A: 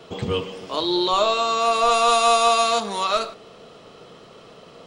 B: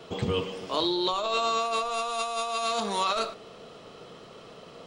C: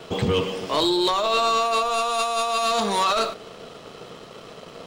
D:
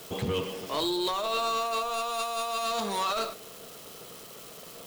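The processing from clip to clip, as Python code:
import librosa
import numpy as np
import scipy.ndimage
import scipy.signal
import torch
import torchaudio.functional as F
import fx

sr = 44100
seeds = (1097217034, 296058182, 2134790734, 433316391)

y1 = fx.over_compress(x, sr, threshold_db=-23.0, ratio=-1.0)
y1 = F.gain(torch.from_numpy(y1), -5.0).numpy()
y2 = fx.leveller(y1, sr, passes=2)
y3 = y2 + 0.5 * 10.0 ** (-28.5 / 20.0) * np.diff(np.sign(y2), prepend=np.sign(y2[:1]))
y3 = F.gain(torch.from_numpy(y3), -8.0).numpy()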